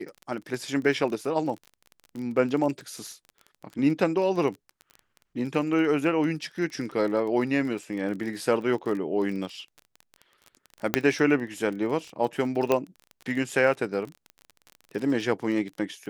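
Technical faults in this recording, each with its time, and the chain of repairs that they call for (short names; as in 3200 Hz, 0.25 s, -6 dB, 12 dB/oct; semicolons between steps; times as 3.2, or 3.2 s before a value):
crackle 25/s -33 dBFS
10.94 pop -5 dBFS
12.72 pop -10 dBFS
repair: de-click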